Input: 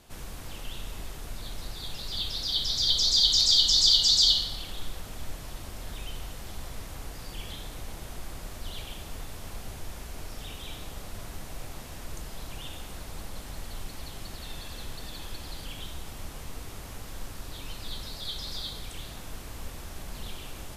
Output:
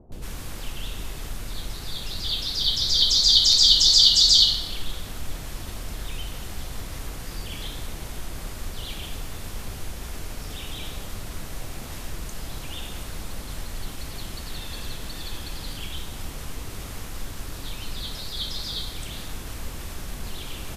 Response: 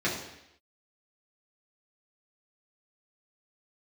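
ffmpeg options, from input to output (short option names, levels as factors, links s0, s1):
-filter_complex "[0:a]areverse,acompressor=mode=upward:threshold=0.02:ratio=2.5,areverse,acrossover=split=720[s0][s1];[s1]adelay=120[s2];[s0][s2]amix=inputs=2:normalize=0,volume=1.78"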